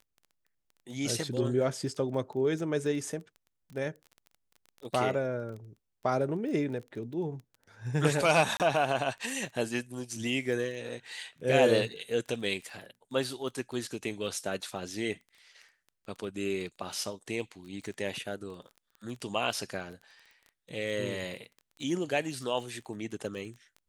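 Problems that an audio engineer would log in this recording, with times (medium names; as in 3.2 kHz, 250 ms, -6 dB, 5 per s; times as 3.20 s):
crackle 18 per s -40 dBFS
8.57–8.60 s: dropout 28 ms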